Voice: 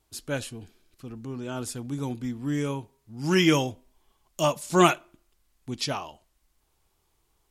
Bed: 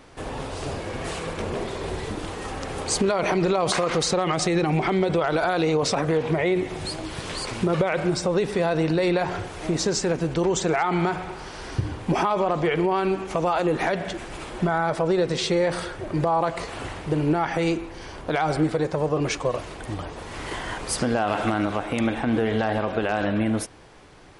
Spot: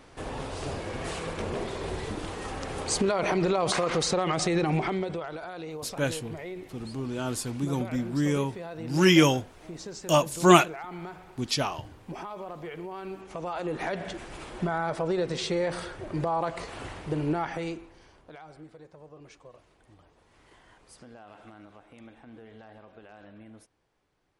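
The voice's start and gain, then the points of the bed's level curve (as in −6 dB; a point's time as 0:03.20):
5.70 s, +2.0 dB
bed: 0:04.76 −3.5 dB
0:05.41 −16.5 dB
0:12.92 −16.5 dB
0:14.04 −6 dB
0:17.40 −6 dB
0:18.52 −26 dB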